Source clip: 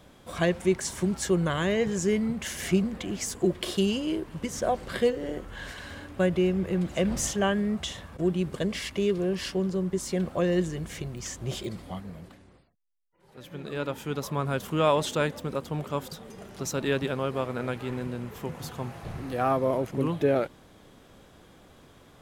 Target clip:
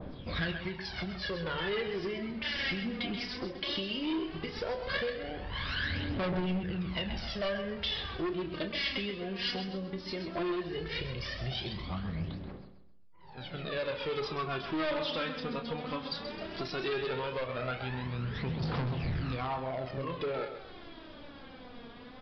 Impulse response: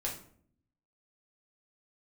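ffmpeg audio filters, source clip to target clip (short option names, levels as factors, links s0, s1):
-filter_complex "[0:a]asplit=2[s0][s1];[s1]adelay=31,volume=0.376[s2];[s0][s2]amix=inputs=2:normalize=0,acompressor=threshold=0.0158:ratio=4,aphaser=in_gain=1:out_gain=1:delay=4.3:decay=0.71:speed=0.16:type=triangular,aecho=1:1:131|262|393|524:0.316|0.104|0.0344|0.0114,asoftclip=type=hard:threshold=0.0266,aresample=11025,aresample=44100,asplit=2[s3][s4];[1:a]atrim=start_sample=2205[s5];[s4][s5]afir=irnorm=-1:irlink=0,volume=0.224[s6];[s3][s6]amix=inputs=2:normalize=0,adynamicequalizer=threshold=0.00398:dfrequency=1500:dqfactor=0.7:tfrequency=1500:tqfactor=0.7:attack=5:release=100:ratio=0.375:range=2.5:mode=boostabove:tftype=highshelf"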